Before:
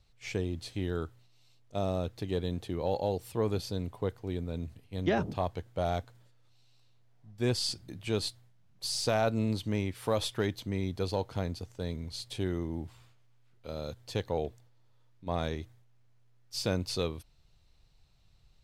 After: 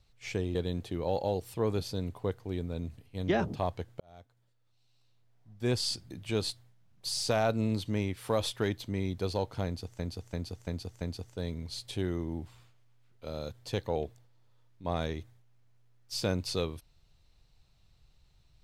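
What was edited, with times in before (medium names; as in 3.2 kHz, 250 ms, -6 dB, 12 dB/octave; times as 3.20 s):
0.55–2.33 s: delete
5.78–7.56 s: fade in linear
11.43–11.77 s: loop, 5 plays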